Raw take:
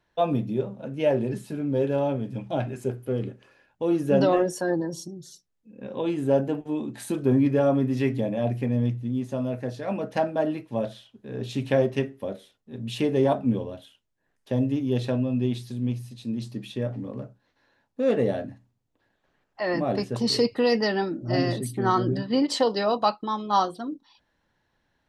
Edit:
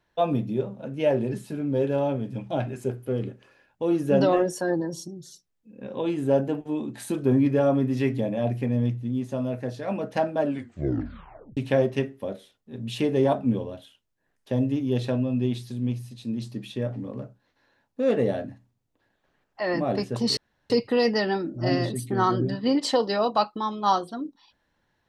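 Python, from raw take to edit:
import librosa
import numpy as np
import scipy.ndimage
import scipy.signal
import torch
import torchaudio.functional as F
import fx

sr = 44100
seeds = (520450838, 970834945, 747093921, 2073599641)

y = fx.edit(x, sr, fx.tape_stop(start_s=10.4, length_s=1.17),
    fx.insert_room_tone(at_s=20.37, length_s=0.33), tone=tone)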